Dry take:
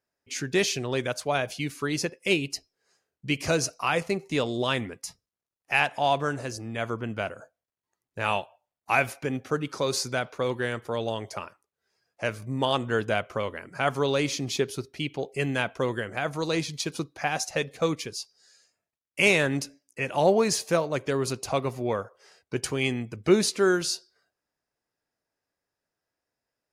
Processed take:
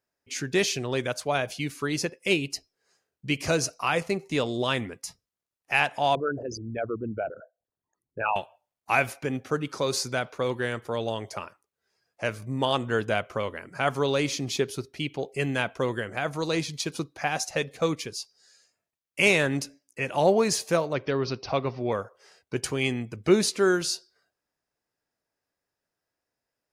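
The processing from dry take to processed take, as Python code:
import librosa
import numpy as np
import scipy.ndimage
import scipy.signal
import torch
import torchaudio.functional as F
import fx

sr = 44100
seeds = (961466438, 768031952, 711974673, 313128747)

y = fx.envelope_sharpen(x, sr, power=3.0, at=(6.15, 8.36))
y = fx.steep_lowpass(y, sr, hz=5800.0, slope=96, at=(20.93, 21.92))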